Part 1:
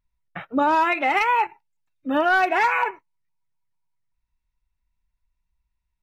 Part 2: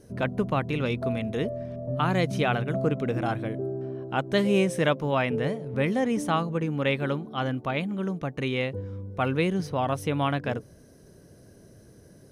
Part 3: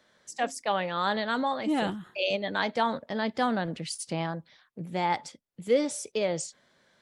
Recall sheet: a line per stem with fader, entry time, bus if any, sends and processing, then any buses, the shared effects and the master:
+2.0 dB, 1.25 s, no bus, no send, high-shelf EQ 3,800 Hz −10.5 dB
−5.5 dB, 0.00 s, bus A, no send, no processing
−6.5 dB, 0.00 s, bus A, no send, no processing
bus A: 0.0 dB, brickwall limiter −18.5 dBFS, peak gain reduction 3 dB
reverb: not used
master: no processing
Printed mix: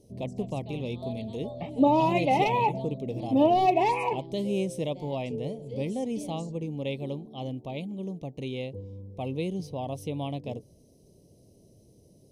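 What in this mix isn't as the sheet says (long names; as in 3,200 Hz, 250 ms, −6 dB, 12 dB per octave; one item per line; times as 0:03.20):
stem 3 −6.5 dB → −17.5 dB
master: extra Butterworth band-reject 1,500 Hz, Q 0.73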